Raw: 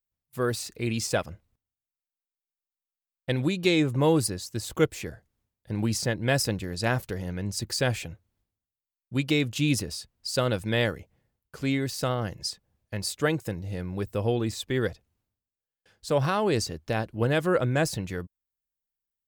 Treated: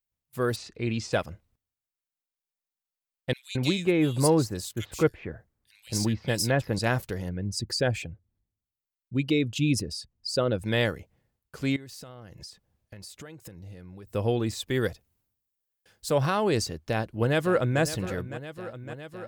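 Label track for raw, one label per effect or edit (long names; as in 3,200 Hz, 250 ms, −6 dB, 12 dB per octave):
0.560000	1.130000	high-frequency loss of the air 120 metres
3.330000	6.790000	multiband delay without the direct sound highs, lows 220 ms, split 2,500 Hz
7.290000	10.630000	spectral envelope exaggerated exponent 1.5
11.760000	14.120000	downward compressor 12 to 1, threshold −40 dBFS
14.660000	16.110000	high-shelf EQ 8,700 Hz +11.5 dB
16.810000	17.810000	delay throw 560 ms, feedback 80%, level −13.5 dB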